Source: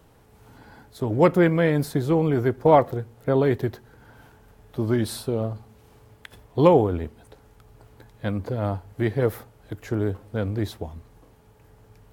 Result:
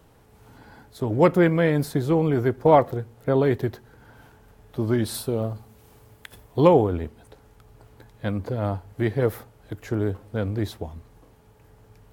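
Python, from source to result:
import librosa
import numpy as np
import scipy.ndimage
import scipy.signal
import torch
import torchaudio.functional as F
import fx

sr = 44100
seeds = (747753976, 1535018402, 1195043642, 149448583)

y = fx.high_shelf(x, sr, hz=8800.0, db=9.5, at=(5.14, 6.6))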